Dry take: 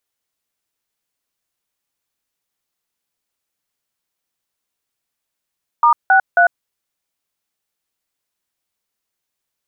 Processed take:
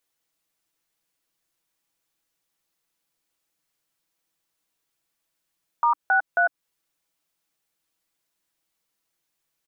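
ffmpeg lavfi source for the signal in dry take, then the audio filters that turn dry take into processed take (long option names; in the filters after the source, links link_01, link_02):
-f lavfi -i "aevalsrc='0.299*clip(min(mod(t,0.27),0.099-mod(t,0.27))/0.002,0,1)*(eq(floor(t/0.27),0)*(sin(2*PI*941*mod(t,0.27))+sin(2*PI*1209*mod(t,0.27)))+eq(floor(t/0.27),1)*(sin(2*PI*770*mod(t,0.27))+sin(2*PI*1477*mod(t,0.27)))+eq(floor(t/0.27),2)*(sin(2*PI*697*mod(t,0.27))+sin(2*PI*1477*mod(t,0.27))))':duration=0.81:sample_rate=44100"
-af "equalizer=frequency=300:width=5.3:gain=3,aecho=1:1:6.1:0.48,alimiter=limit=-13dB:level=0:latency=1:release=190"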